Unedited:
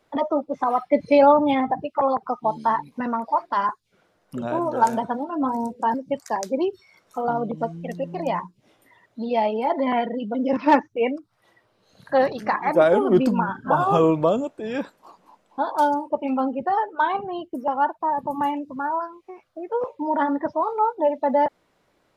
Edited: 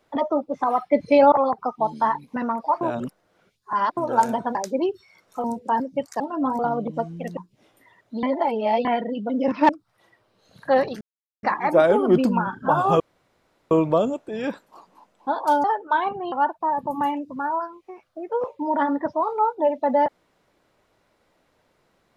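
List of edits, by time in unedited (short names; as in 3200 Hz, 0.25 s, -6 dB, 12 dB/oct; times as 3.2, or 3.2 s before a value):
1.32–1.96 cut
3.45–4.61 reverse
5.19–5.58 swap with 6.34–7.23
8.01–8.42 cut
9.28–9.9 reverse
10.74–11.13 cut
12.45 insert silence 0.42 s
14.02 insert room tone 0.71 s
15.95–16.72 cut
17.4–17.72 cut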